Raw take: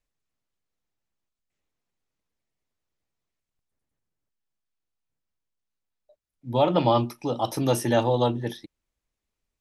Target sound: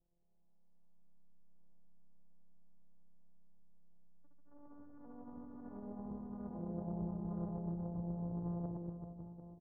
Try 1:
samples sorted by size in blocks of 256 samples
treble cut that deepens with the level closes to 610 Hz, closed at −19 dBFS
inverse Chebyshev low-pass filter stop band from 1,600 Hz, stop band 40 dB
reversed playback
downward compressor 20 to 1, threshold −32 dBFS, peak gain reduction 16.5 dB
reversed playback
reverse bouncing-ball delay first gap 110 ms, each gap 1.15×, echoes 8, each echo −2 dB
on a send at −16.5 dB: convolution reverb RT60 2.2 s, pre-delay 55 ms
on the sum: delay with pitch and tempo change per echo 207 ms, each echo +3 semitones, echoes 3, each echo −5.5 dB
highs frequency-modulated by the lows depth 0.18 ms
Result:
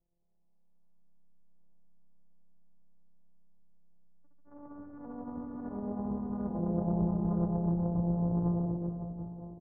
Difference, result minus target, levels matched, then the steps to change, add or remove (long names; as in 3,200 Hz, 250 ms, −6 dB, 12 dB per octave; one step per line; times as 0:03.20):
downward compressor: peak gain reduction −11 dB
change: downward compressor 20 to 1, threshold −43.5 dBFS, peak gain reduction 27 dB